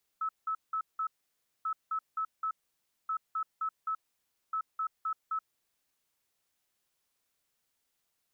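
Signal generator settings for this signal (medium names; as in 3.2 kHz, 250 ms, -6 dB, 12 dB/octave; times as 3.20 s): beep pattern sine 1.3 kHz, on 0.08 s, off 0.18 s, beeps 4, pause 0.58 s, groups 4, -29.5 dBFS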